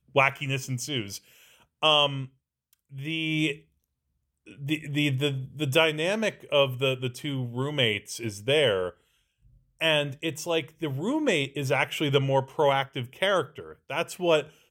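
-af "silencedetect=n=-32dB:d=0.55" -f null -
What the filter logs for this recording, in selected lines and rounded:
silence_start: 1.17
silence_end: 1.83 | silence_duration: 0.66
silence_start: 2.25
silence_end: 2.99 | silence_duration: 0.74
silence_start: 3.53
silence_end: 4.63 | silence_duration: 1.10
silence_start: 8.89
silence_end: 9.81 | silence_duration: 0.92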